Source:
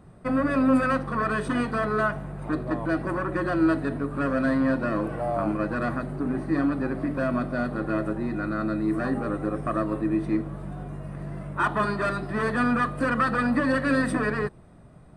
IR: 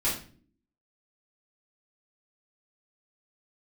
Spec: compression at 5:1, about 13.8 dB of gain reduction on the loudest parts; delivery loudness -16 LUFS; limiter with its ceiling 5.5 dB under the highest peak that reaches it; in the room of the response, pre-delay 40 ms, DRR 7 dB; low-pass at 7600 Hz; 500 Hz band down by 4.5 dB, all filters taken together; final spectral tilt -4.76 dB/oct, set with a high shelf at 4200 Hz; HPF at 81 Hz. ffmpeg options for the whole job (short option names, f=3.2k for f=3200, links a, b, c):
-filter_complex "[0:a]highpass=81,lowpass=7.6k,equalizer=f=500:t=o:g=-6,highshelf=f=4.2k:g=7,acompressor=threshold=-35dB:ratio=5,alimiter=level_in=5.5dB:limit=-24dB:level=0:latency=1,volume=-5.5dB,asplit=2[a][b];[1:a]atrim=start_sample=2205,adelay=40[c];[b][c]afir=irnorm=-1:irlink=0,volume=-16dB[d];[a][d]amix=inputs=2:normalize=0,volume=21dB"